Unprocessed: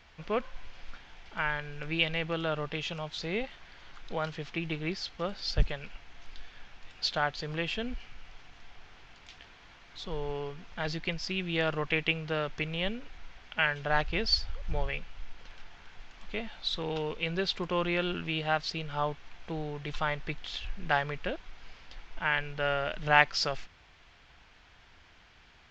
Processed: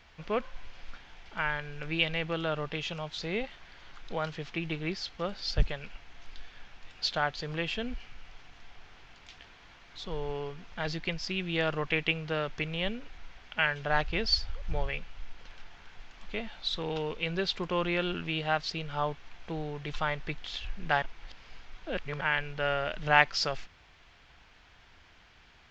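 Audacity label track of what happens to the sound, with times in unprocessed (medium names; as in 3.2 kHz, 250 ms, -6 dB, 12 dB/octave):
21.020000	22.210000	reverse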